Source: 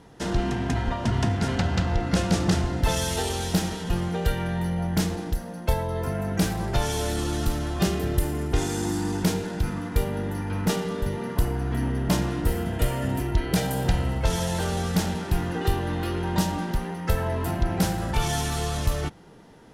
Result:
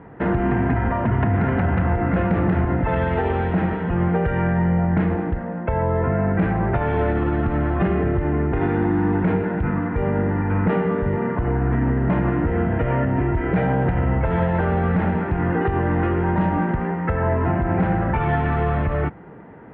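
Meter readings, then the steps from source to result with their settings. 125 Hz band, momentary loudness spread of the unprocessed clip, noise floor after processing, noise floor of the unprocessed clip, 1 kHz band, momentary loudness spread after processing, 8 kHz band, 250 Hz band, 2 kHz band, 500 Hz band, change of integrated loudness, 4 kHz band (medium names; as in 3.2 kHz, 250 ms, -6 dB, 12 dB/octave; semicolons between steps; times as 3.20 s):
+5.5 dB, 4 LU, -28 dBFS, -36 dBFS, +7.0 dB, 3 LU, under -40 dB, +6.0 dB, +6.0 dB, +7.0 dB, +5.5 dB, under -10 dB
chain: steep low-pass 2.2 kHz 36 dB/octave; peak limiter -19.5 dBFS, peak gain reduction 8.5 dB; high-pass 58 Hz; trim +8.5 dB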